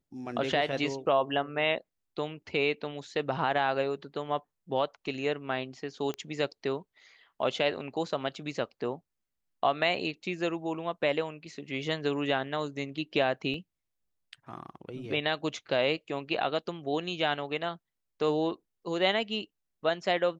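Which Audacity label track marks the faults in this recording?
6.140000	6.140000	pop -22 dBFS
13.540000	13.540000	dropout 2.3 ms

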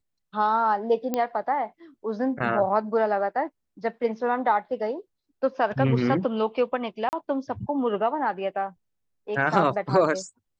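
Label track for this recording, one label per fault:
1.140000	1.140000	pop -12 dBFS
7.090000	7.130000	dropout 39 ms

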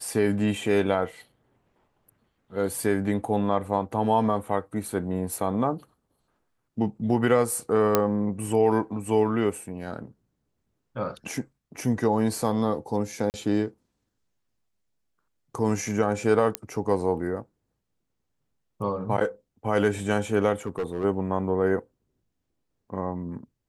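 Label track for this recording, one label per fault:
7.950000	7.950000	pop -5 dBFS
13.300000	13.340000	dropout 39 ms
16.550000	16.550000	pop -8 dBFS
20.660000	21.050000	clipped -23.5 dBFS

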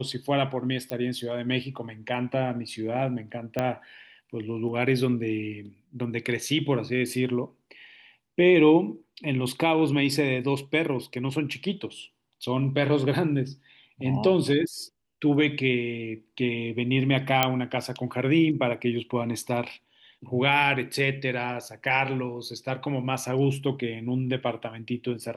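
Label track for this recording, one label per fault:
0.900000	0.900000	pop -16 dBFS
3.590000	3.590000	pop -13 dBFS
17.430000	17.430000	pop -4 dBFS

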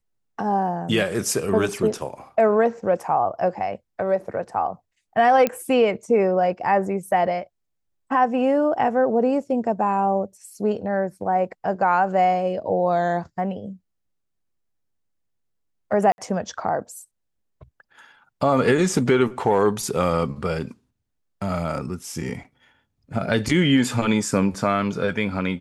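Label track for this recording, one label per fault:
5.470000	5.470000	pop -8 dBFS
16.120000	16.180000	dropout 61 ms

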